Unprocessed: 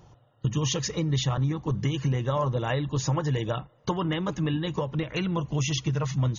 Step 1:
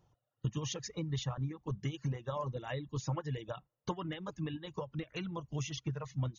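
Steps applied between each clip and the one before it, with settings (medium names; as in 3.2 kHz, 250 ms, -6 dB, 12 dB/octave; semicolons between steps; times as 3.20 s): reverb removal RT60 0.94 s; upward expansion 1.5:1, over -40 dBFS; trim -7.5 dB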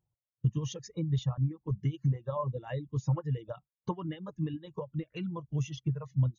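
spectral contrast expander 1.5:1; trim +5 dB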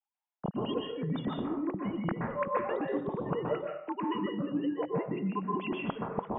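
formants replaced by sine waves; reverse; compression 6:1, threshold -36 dBFS, peak gain reduction 17 dB; reverse; reverberation RT60 0.65 s, pre-delay 118 ms, DRR -1 dB; trim +4.5 dB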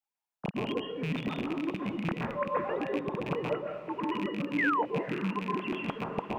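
rattle on loud lows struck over -37 dBFS, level -28 dBFS; painted sound fall, 4.58–4.83 s, 830–2200 Hz -28 dBFS; echo that smears into a reverb 509 ms, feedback 47%, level -15.5 dB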